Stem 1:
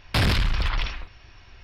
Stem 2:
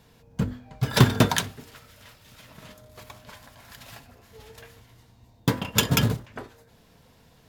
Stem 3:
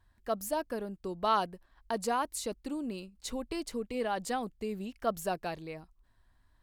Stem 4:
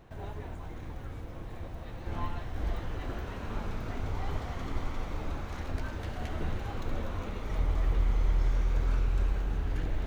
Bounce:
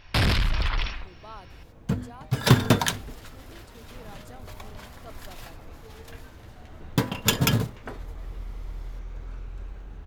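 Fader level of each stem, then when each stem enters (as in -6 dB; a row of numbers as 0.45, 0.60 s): -1.0, -0.5, -16.0, -10.0 dB; 0.00, 1.50, 0.00, 0.40 s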